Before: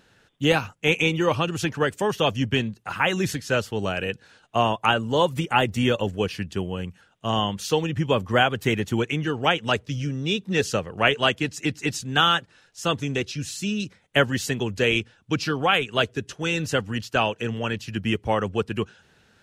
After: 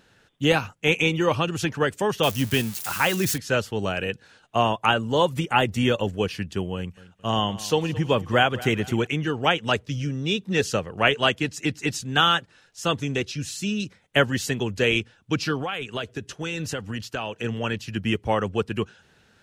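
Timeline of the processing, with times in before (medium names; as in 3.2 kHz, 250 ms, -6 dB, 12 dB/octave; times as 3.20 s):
2.23–3.38 s: zero-crossing glitches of -21.5 dBFS
6.75–9.07 s: feedback delay 220 ms, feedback 44%, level -18 dB
15.61–17.44 s: compression, threshold -25 dBFS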